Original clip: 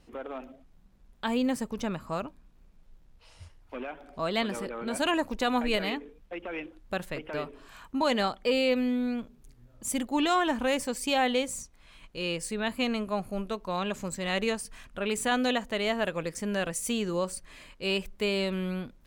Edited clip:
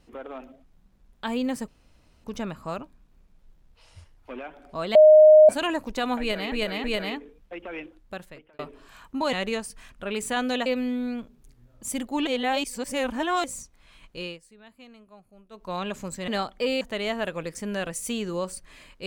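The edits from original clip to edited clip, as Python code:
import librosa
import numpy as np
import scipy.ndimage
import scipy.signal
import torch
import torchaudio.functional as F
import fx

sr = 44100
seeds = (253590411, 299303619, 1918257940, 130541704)

y = fx.edit(x, sr, fx.insert_room_tone(at_s=1.68, length_s=0.56),
    fx.bleep(start_s=4.39, length_s=0.54, hz=617.0, db=-8.5),
    fx.repeat(start_s=5.64, length_s=0.32, count=3),
    fx.fade_out_span(start_s=6.61, length_s=0.78),
    fx.swap(start_s=8.13, length_s=0.53, other_s=14.28, other_length_s=1.33),
    fx.reverse_span(start_s=10.27, length_s=1.17),
    fx.fade_down_up(start_s=12.19, length_s=1.52, db=-20.5, fade_s=0.21), tone=tone)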